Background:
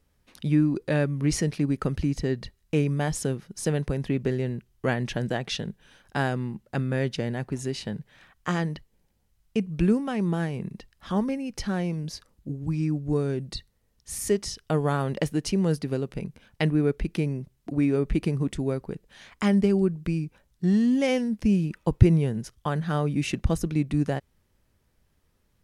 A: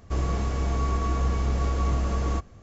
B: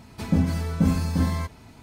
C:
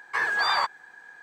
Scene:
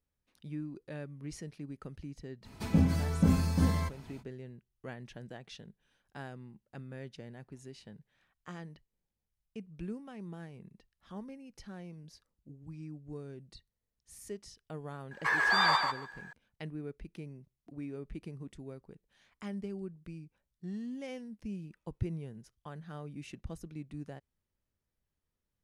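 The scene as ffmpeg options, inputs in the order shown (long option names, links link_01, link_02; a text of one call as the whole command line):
ffmpeg -i bed.wav -i cue0.wav -i cue1.wav -i cue2.wav -filter_complex "[0:a]volume=-18.5dB[link_01];[3:a]aecho=1:1:146|292|438:0.631|0.101|0.0162[link_02];[2:a]atrim=end=1.82,asetpts=PTS-STARTPTS,volume=-4.5dB,afade=type=in:duration=0.05,afade=type=out:start_time=1.77:duration=0.05,adelay=2420[link_03];[link_02]atrim=end=1.22,asetpts=PTS-STARTPTS,volume=-3.5dB,afade=type=in:duration=0.004:curve=hsin,afade=type=out:start_time=1.216:duration=0.004:curve=hsin,adelay=15110[link_04];[link_01][link_03][link_04]amix=inputs=3:normalize=0" out.wav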